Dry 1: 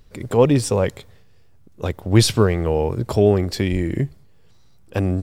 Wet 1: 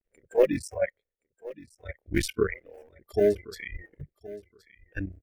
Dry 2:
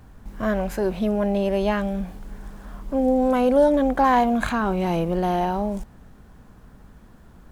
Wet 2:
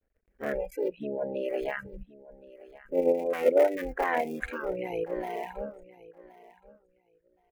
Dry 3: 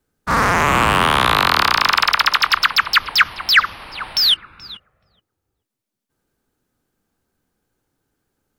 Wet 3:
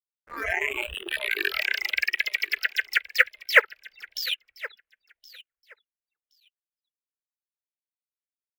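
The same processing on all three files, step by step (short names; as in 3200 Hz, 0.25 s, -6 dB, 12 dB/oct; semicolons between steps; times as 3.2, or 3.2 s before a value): cycle switcher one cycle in 3, muted; reverb removal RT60 1.8 s; in parallel at +2 dB: level quantiser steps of 11 dB; on the sum: gate with hold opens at -37 dBFS; spectral noise reduction 22 dB; ten-band EQ 125 Hz -11 dB, 250 Hz -3 dB, 500 Hz +11 dB, 1000 Hz -11 dB, 2000 Hz +11 dB, 4000 Hz -10 dB, 8000 Hz -5 dB; on a send: feedback echo 1.071 s, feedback 15%, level -19 dB; on the sum: gain -11 dB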